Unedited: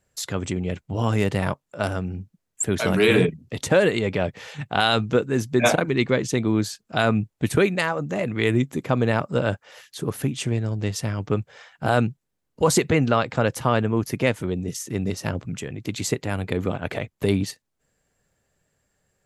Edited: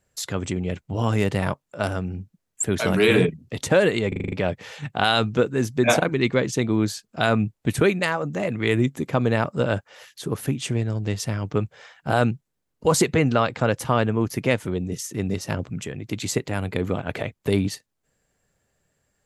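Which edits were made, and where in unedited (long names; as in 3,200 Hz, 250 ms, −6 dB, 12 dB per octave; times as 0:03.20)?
0:04.08: stutter 0.04 s, 7 plays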